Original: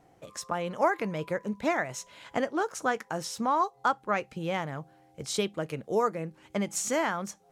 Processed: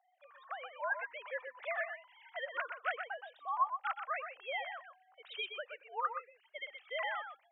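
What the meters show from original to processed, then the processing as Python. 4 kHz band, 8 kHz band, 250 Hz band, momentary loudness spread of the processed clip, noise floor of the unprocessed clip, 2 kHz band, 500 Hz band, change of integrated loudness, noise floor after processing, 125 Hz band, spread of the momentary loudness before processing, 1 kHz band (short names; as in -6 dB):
-6.5 dB, under -40 dB, under -40 dB, 12 LU, -62 dBFS, -4.0 dB, -14.0 dB, -9.5 dB, -72 dBFS, under -40 dB, 11 LU, -8.5 dB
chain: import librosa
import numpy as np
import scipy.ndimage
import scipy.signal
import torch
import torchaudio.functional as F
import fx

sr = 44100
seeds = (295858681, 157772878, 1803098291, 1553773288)

p1 = fx.sine_speech(x, sr)
p2 = scipy.signal.sosfilt(scipy.signal.bessel(8, 1100.0, 'highpass', norm='mag', fs=sr, output='sos'), p1)
p3 = fx.rider(p2, sr, range_db=5, speed_s=0.5)
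p4 = p3 + fx.echo_single(p3, sr, ms=123, db=-7.5, dry=0)
y = p4 * librosa.db_to_amplitude(-4.0)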